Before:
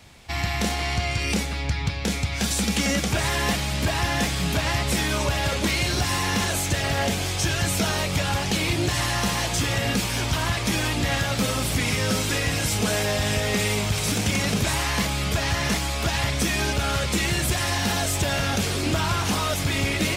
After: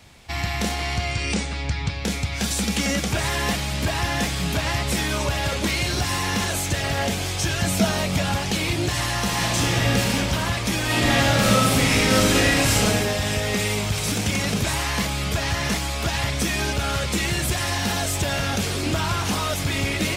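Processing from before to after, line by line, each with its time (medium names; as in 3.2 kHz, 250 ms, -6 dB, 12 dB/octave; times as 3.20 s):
1.11–1.96 s: brick-wall FIR low-pass 9.5 kHz
7.62–8.38 s: small resonant body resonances 210/660 Hz, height 8 dB
9.26–10.09 s: reverb throw, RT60 2.3 s, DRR -1 dB
10.85–12.84 s: reverb throw, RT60 1.1 s, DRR -5.5 dB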